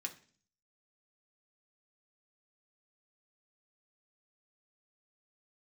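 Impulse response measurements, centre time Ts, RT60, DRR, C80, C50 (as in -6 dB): 8 ms, 0.45 s, 2.0 dB, 19.0 dB, 14.5 dB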